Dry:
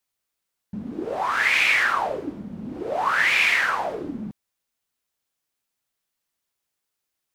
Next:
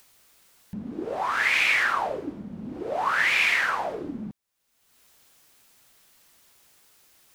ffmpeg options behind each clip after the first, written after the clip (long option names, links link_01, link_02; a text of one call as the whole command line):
ffmpeg -i in.wav -af "acompressor=mode=upward:threshold=-36dB:ratio=2.5,volume=-2.5dB" out.wav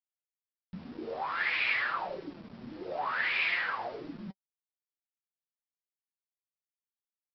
ffmpeg -i in.wav -af "flanger=delay=5.6:depth=3.3:regen=56:speed=1.4:shape=sinusoidal,aresample=11025,aeval=exprs='val(0)*gte(abs(val(0)),0.00631)':channel_layout=same,aresample=44100,flanger=delay=5.2:depth=7.7:regen=44:speed=0.46:shape=sinusoidal" out.wav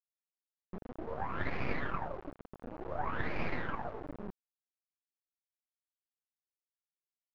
ffmpeg -i in.wav -af "aeval=exprs='0.158*(cos(1*acos(clip(val(0)/0.158,-1,1)))-cos(1*PI/2))+0.0708*(cos(2*acos(clip(val(0)/0.158,-1,1)))-cos(2*PI/2))+0.0112*(cos(6*acos(clip(val(0)/0.158,-1,1)))-cos(6*PI/2))+0.00316*(cos(7*acos(clip(val(0)/0.158,-1,1)))-cos(7*PI/2))':channel_layout=same,acrusher=bits=4:dc=4:mix=0:aa=0.000001,lowpass=1100,volume=1dB" out.wav